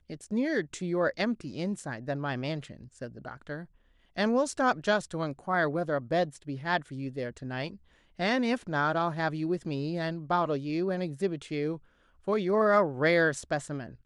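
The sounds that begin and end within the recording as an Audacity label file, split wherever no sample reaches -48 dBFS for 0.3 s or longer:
4.160000	7.760000	sound
8.190000	11.780000	sound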